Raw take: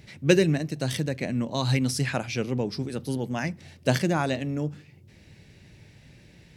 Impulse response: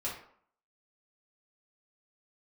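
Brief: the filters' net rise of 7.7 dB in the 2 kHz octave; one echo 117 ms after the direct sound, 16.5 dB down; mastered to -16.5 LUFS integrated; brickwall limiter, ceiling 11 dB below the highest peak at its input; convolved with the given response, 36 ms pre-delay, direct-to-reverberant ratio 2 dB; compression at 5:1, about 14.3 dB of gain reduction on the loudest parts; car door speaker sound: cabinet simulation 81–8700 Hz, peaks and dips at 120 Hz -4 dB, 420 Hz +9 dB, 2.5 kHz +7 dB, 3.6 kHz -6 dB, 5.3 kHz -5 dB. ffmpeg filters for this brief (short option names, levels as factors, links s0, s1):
-filter_complex "[0:a]equalizer=f=2000:t=o:g=7,acompressor=threshold=0.0398:ratio=5,alimiter=level_in=1.06:limit=0.0631:level=0:latency=1,volume=0.944,aecho=1:1:117:0.15,asplit=2[s0][s1];[1:a]atrim=start_sample=2205,adelay=36[s2];[s1][s2]afir=irnorm=-1:irlink=0,volume=0.562[s3];[s0][s3]amix=inputs=2:normalize=0,highpass=81,equalizer=f=120:t=q:w=4:g=-4,equalizer=f=420:t=q:w=4:g=9,equalizer=f=2500:t=q:w=4:g=7,equalizer=f=3600:t=q:w=4:g=-6,equalizer=f=5300:t=q:w=4:g=-5,lowpass=f=8700:w=0.5412,lowpass=f=8700:w=1.3066,volume=5.96"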